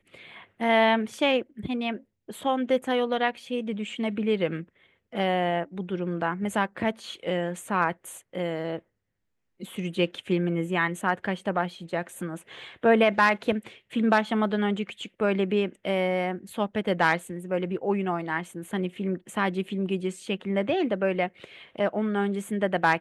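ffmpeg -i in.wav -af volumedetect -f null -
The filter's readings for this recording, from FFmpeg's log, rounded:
mean_volume: -27.3 dB
max_volume: -8.5 dB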